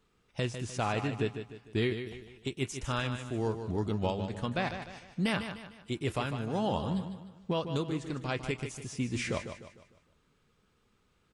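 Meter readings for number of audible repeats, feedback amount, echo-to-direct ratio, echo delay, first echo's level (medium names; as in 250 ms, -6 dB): 4, 41%, -8.0 dB, 151 ms, -9.0 dB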